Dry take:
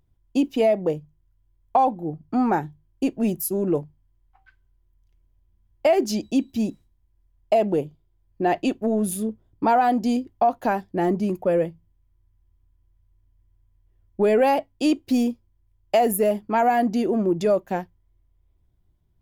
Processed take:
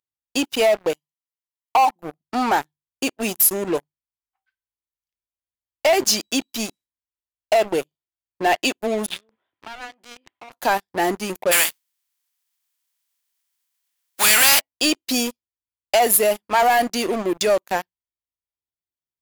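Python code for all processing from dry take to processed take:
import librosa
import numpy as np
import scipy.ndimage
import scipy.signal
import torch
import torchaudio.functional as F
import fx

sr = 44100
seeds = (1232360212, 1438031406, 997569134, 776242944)

y = fx.chain(x, sr, fx.highpass(hz=730.0, slope=6),
    fx.comb(ms=1.0, depth=0.98), at=(0.93, 1.96))
y = fx.chain(y, sr, fx.gaussian_blur(sigma=4.0),
    fx.differentiator(),
    fx.env_flatten(amount_pct=100), at=(9.06, 10.52))
y = fx.spec_flatten(y, sr, power=0.46, at=(11.51, 14.59), fade=0.02)
y = fx.cheby1_highpass(y, sr, hz=260.0, order=3, at=(11.51, 14.59), fade=0.02)
y = fx.peak_eq(y, sr, hz=430.0, db=-12.0, octaves=1.0, at=(11.51, 14.59), fade=0.02)
y = fx.highpass(y, sr, hz=1200.0, slope=6)
y = fx.high_shelf(y, sr, hz=2600.0, db=8.0)
y = fx.leveller(y, sr, passes=5)
y = y * librosa.db_to_amplitude(-8.0)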